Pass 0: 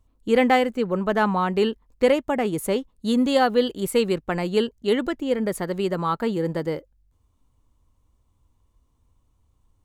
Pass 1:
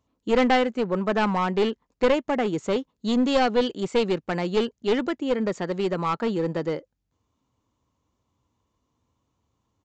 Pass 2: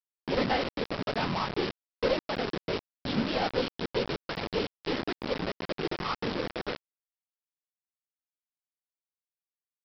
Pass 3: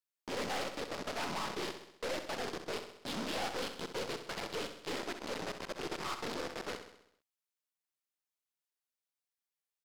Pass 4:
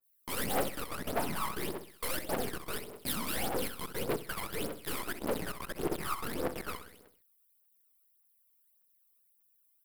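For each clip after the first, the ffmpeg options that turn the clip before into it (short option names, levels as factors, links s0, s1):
-af "highpass=140,aresample=16000,aeval=exprs='clip(val(0),-1,0.1)':c=same,aresample=44100"
-af "afftfilt=real='hypot(re,im)*cos(2*PI*random(0))':imag='hypot(re,im)*sin(2*PI*random(1))':win_size=512:overlap=0.75,aresample=11025,acrusher=bits=4:mix=0:aa=0.000001,aresample=44100,volume=0.75"
-filter_complex "[0:a]highpass=f=510:p=1,aeval=exprs='(tanh(70.8*val(0)+0.3)-tanh(0.3))/70.8':c=same,asplit=2[s0][s1];[s1]aecho=0:1:65|130|195|260|325|390|455:0.355|0.199|0.111|0.0623|0.0349|0.0195|0.0109[s2];[s0][s2]amix=inputs=2:normalize=0,volume=1.26"
-af "aexciter=amount=6.5:drive=7.8:freq=9000,aphaser=in_gain=1:out_gain=1:delay=1:decay=0.7:speed=1.7:type=triangular,adynamicequalizer=threshold=0.00282:dfrequency=2600:dqfactor=0.7:tfrequency=2600:tqfactor=0.7:attack=5:release=100:ratio=0.375:range=3.5:mode=cutabove:tftype=highshelf"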